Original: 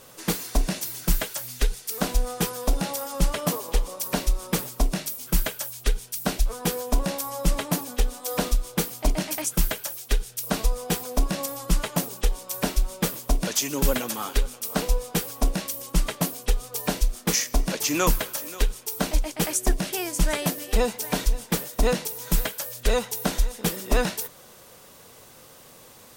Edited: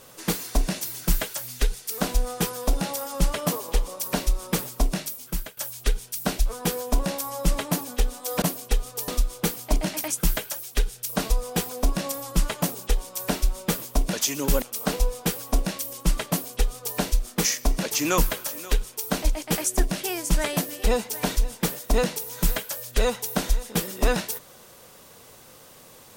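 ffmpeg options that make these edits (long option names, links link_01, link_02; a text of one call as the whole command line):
ffmpeg -i in.wav -filter_complex "[0:a]asplit=5[link_01][link_02][link_03][link_04][link_05];[link_01]atrim=end=5.57,asetpts=PTS-STARTPTS,afade=type=out:start_time=4.99:duration=0.58:silence=0.141254[link_06];[link_02]atrim=start=5.57:end=8.422,asetpts=PTS-STARTPTS,afade=type=in:duration=0.004:curve=hsin:silence=0.141254[link_07];[link_03]atrim=start=16.188:end=16.852[link_08];[link_04]atrim=start=8.418:end=13.962[link_09];[link_05]atrim=start=14.508[link_10];[link_06][link_07]concat=n=2:v=0:a=1[link_11];[link_11][link_08]acrossfade=duration=0.004:curve1=hsin:curve2=hsin[link_12];[link_12][link_09]acrossfade=duration=0.004:curve1=hsin:curve2=hsin[link_13];[link_13][link_10]acrossfade=duration=0.004:curve1=hsin:curve2=hsin" out.wav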